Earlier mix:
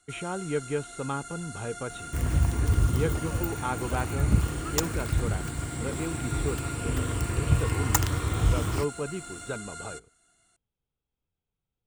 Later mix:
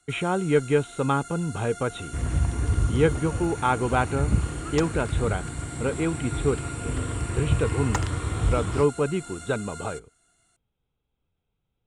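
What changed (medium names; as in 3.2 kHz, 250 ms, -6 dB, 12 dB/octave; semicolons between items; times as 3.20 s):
speech +8.5 dB; second sound: add distance through air 120 m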